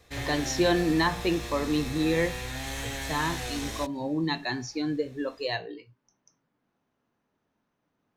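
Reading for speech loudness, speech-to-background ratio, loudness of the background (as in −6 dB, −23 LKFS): −29.0 LKFS, 6.5 dB, −35.5 LKFS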